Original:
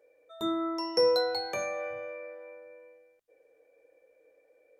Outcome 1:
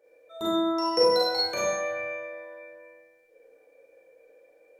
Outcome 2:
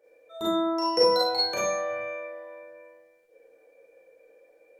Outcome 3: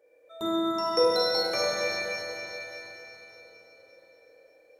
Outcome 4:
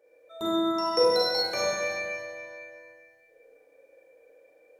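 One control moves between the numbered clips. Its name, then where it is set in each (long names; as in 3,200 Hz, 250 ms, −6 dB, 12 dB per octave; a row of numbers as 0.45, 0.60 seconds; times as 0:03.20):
four-comb reverb, RT60: 0.72, 0.33, 4.2, 1.8 seconds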